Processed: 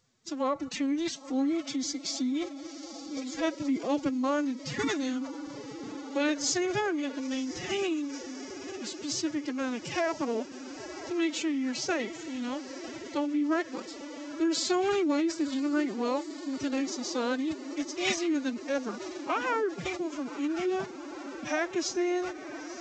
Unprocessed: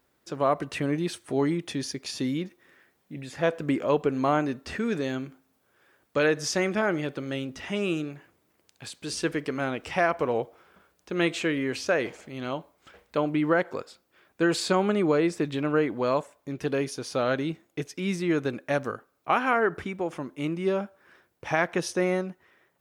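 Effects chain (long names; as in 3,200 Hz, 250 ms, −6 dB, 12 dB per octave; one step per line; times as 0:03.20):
bass and treble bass +9 dB, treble +13 dB
feedback delay with all-pass diffusion 976 ms, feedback 77%, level −15 dB
phase-vocoder pitch shift with formants kept +11.5 semitones
in parallel at −2 dB: downward compressor 8 to 1, threshold −33 dBFS, peak gain reduction 16 dB
on the sum: level −7.5 dB
G.722 64 kbit/s 16,000 Hz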